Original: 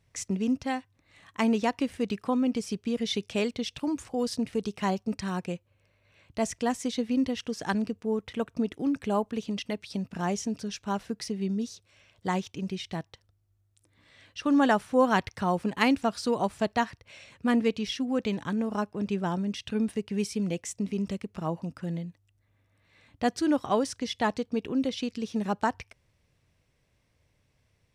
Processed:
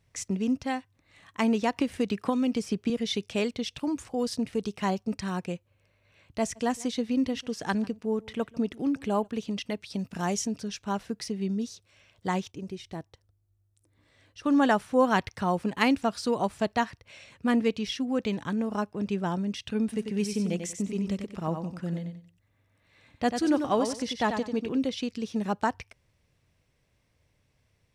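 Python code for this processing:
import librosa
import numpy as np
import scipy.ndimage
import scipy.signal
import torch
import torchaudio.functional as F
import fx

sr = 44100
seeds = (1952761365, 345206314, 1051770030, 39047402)

y = fx.band_squash(x, sr, depth_pct=100, at=(1.76, 2.9))
y = fx.echo_single(y, sr, ms=145, db=-23.0, at=(6.55, 9.26), fade=0.02)
y = fx.high_shelf(y, sr, hz=4700.0, db=8.0, at=(9.99, 10.47))
y = fx.curve_eq(y, sr, hz=(110.0, 190.0, 310.0, 3000.0, 9400.0), db=(0, -6, 0, -9, -3), at=(12.5, 14.43), fade=0.02)
y = fx.echo_feedback(y, sr, ms=93, feedback_pct=24, wet_db=-7.0, at=(19.92, 24.77), fade=0.02)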